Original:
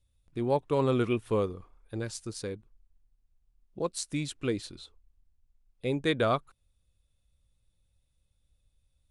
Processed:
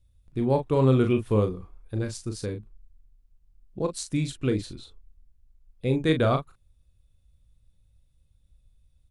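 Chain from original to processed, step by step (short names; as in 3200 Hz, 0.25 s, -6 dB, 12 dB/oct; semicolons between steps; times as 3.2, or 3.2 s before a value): low shelf 270 Hz +10 dB; doubler 38 ms -7 dB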